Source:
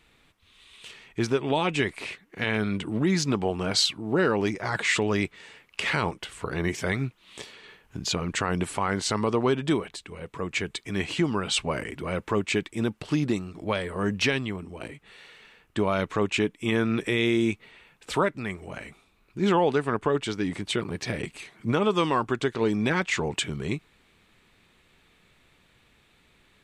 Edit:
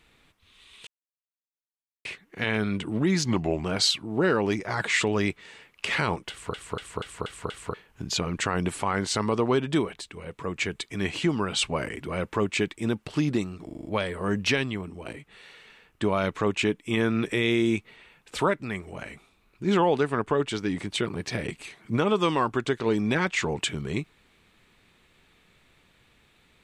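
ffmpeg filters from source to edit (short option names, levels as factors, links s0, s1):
-filter_complex "[0:a]asplit=16[s0][s1][s2][s3][s4][s5][s6][s7][s8][s9][s10][s11][s12][s13][s14][s15];[s0]atrim=end=0.87,asetpts=PTS-STARTPTS,afade=t=out:st=0.866:d=0.004:c=hsin[s16];[s1]atrim=start=0.87:end=2.05,asetpts=PTS-STARTPTS,volume=0[s17];[s2]atrim=start=2.05:end=3.254,asetpts=PTS-STARTPTS,afade=t=in:d=0.004:c=hsin[s18];[s3]atrim=start=3.25:end=3.59,asetpts=PTS-STARTPTS,asetrate=38367,aresample=44100,atrim=end_sample=17234,asetpts=PTS-STARTPTS[s19];[s4]atrim=start=3.586:end=6.492[s20];[s5]atrim=start=6.248:end=6.492[s21];[s6]atrim=start=6.248:end=6.492[s22];[s7]atrim=start=6.248:end=6.492[s23];[s8]atrim=start=6.248:end=6.492[s24];[s9]atrim=start=6.248:end=6.492[s25];[s10]atrim=start=7.688:end=13.642[s26];[s11]atrim=start=13.598:end=13.642[s27];[s12]atrim=start=13.598:end=13.642[s28];[s13]atrim=start=13.598:end=13.642[s29];[s14]atrim=start=13.598:end=13.642[s30];[s15]atrim=start=13.598[s31];[s16][s17][s18]concat=n=3:v=0:a=1[s32];[s32][s19]acrossfade=d=0.004:c1=hsin:c2=hsin[s33];[s33][s20]acrossfade=d=0.004:c1=hsin:c2=hsin[s34];[s34][s21]acrossfade=d=0.004:c1=hsin:c2=hsin[s35];[s35][s22]acrossfade=d=0.004:c1=hsin:c2=hsin[s36];[s36][s23]acrossfade=d=0.004:c1=hsin:c2=hsin[s37];[s37][s24]acrossfade=d=0.004:c1=hsin:c2=hsin[s38];[s38][s25]acrossfade=d=0.004:c1=hsin:c2=hsin[s39];[s39][s26]acrossfade=d=0.004:c1=hsin:c2=hsin[s40];[s40][s27]acrossfade=d=0.004:c1=hsin:c2=hsin[s41];[s41][s28]acrossfade=d=0.004:c1=hsin:c2=hsin[s42];[s42][s29]acrossfade=d=0.004:c1=hsin:c2=hsin[s43];[s43][s30]acrossfade=d=0.004:c1=hsin:c2=hsin[s44];[s44][s31]acrossfade=d=0.004:c1=hsin:c2=hsin"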